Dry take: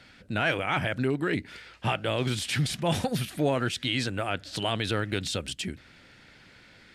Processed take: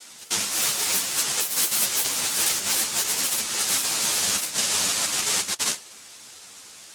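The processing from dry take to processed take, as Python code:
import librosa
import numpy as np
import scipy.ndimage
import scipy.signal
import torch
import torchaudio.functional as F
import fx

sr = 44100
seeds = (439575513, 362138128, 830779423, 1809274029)

y = fx.noise_vocoder(x, sr, seeds[0], bands=1)
y = fx.echo_pitch(y, sr, ms=179, semitones=5, count=3, db_per_echo=-6.0)
y = fx.over_compress(y, sr, threshold_db=-31.0, ratio=-1.0)
y = fx.high_shelf(y, sr, hz=5800.0, db=11.5)
y = fx.ensemble(y, sr)
y = F.gain(torch.from_numpy(y), 4.5).numpy()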